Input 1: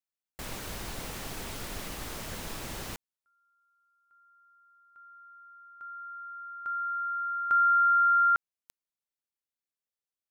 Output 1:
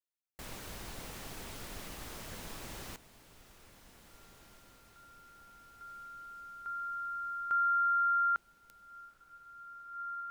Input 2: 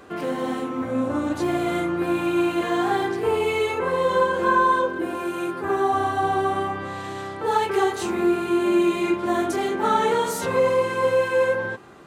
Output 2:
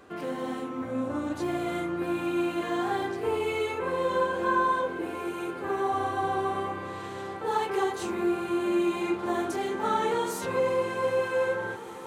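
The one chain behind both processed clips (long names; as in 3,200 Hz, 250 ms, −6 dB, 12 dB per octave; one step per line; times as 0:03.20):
feedback delay with all-pass diffusion 1,783 ms, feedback 59%, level −14 dB
level −6.5 dB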